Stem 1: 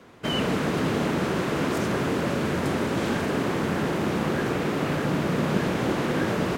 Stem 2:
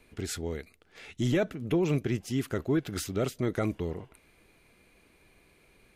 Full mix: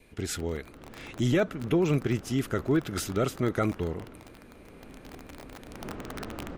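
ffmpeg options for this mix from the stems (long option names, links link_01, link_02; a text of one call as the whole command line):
ffmpeg -i stem1.wav -i stem2.wav -filter_complex "[0:a]aemphasis=mode=reproduction:type=bsi,aeval=exprs='(mod(4.22*val(0)+1,2)-1)/4.22':channel_layout=same,aeval=exprs='val(0)*sin(2*PI*110*n/s)':channel_layout=same,volume=-2.5dB,afade=type=in:start_time=1.15:duration=0.39:silence=0.375837,afade=type=out:start_time=3.72:duration=0.67:silence=0.237137,afade=type=in:start_time=5.66:duration=0.21:silence=0.398107[link_01];[1:a]bandreject=frequency=4400:width=29,volume=2dB,asplit=2[link_02][link_03];[link_03]apad=whole_len=290020[link_04];[link_01][link_04]sidechaincompress=threshold=-34dB:ratio=6:attack=10:release=1240[link_05];[link_05][link_02]amix=inputs=2:normalize=0,adynamicequalizer=threshold=0.00251:dfrequency=1300:dqfactor=4.7:tfrequency=1300:tqfactor=4.7:attack=5:release=100:ratio=0.375:range=3:mode=boostabove:tftype=bell" out.wav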